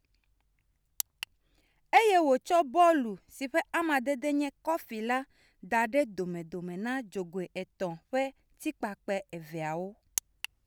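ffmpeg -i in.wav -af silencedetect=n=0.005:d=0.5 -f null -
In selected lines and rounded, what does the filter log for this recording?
silence_start: 0.00
silence_end: 1.00 | silence_duration: 1.00
silence_start: 1.24
silence_end: 1.93 | silence_duration: 0.69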